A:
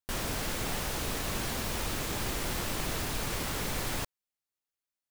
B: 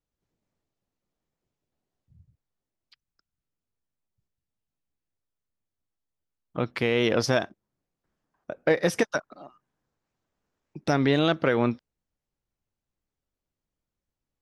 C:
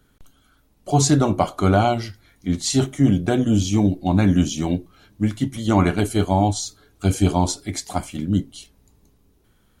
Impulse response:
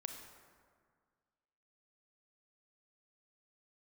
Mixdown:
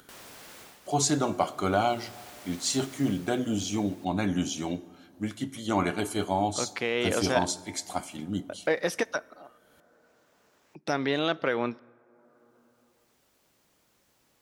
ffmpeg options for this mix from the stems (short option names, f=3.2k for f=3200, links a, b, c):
-filter_complex "[0:a]volume=-1dB,afade=t=out:st=0.6:d=0.2:silence=0.266073,afade=t=in:st=1.77:d=0.43:silence=0.281838,afade=t=out:st=3.03:d=0.37:silence=0.334965[a];[1:a]volume=-3dB,asplit=2[b][c];[c]volume=-16dB[d];[2:a]volume=-7dB,asplit=2[e][f];[f]volume=-7.5dB[g];[3:a]atrim=start_sample=2205[h];[d][g]amix=inputs=2:normalize=0[i];[i][h]afir=irnorm=-1:irlink=0[j];[a][b][e][j]amix=inputs=4:normalize=0,highpass=f=390:p=1,acompressor=mode=upward:threshold=-47dB:ratio=2.5"